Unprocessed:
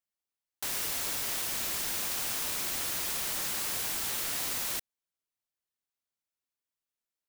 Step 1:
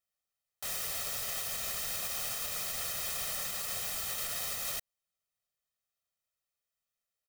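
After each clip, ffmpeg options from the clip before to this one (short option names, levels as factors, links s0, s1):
-af "alimiter=level_in=1.58:limit=0.0631:level=0:latency=1:release=116,volume=0.631,aecho=1:1:1.6:0.74"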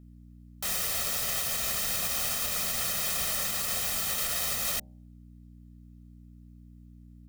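-af "aeval=exprs='val(0)+0.00158*(sin(2*PI*60*n/s)+sin(2*PI*2*60*n/s)/2+sin(2*PI*3*60*n/s)/3+sin(2*PI*4*60*n/s)/4+sin(2*PI*5*60*n/s)/5)':c=same,equalizer=f=210:t=o:w=0.64:g=5,bandreject=f=68.86:t=h:w=4,bandreject=f=137.72:t=h:w=4,bandreject=f=206.58:t=h:w=4,bandreject=f=275.44:t=h:w=4,bandreject=f=344.3:t=h:w=4,bandreject=f=413.16:t=h:w=4,bandreject=f=482.02:t=h:w=4,bandreject=f=550.88:t=h:w=4,bandreject=f=619.74:t=h:w=4,bandreject=f=688.6:t=h:w=4,bandreject=f=757.46:t=h:w=4,bandreject=f=826.32:t=h:w=4,bandreject=f=895.18:t=h:w=4,volume=2"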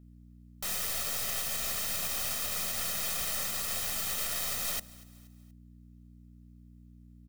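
-af "aeval=exprs='(tanh(17.8*val(0)+0.6)-tanh(0.6))/17.8':c=same,aecho=1:1:238|476|714:0.0794|0.0357|0.0161"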